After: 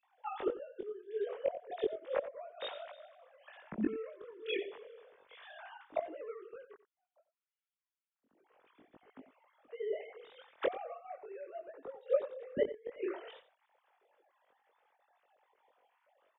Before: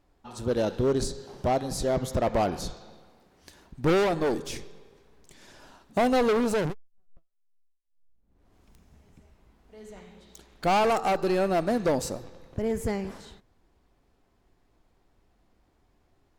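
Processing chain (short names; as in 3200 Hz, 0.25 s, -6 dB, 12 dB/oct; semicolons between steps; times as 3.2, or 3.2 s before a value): sine-wave speech; flipped gate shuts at -25 dBFS, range -29 dB; chorus voices 2, 0.33 Hz, delay 21 ms, depth 2.1 ms; on a send: echo 90 ms -14.5 dB; on the sum: gain +9.5 dB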